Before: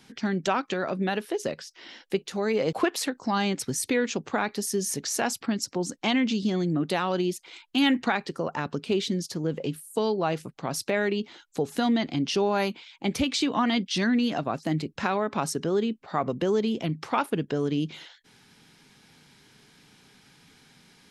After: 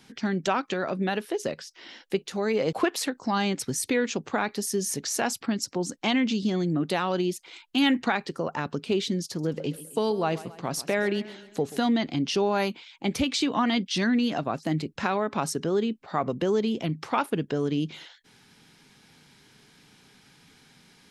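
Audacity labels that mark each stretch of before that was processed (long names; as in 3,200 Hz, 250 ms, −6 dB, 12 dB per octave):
9.250000	11.850000	feedback echo with a swinging delay time 134 ms, feedback 51%, depth 76 cents, level −16.5 dB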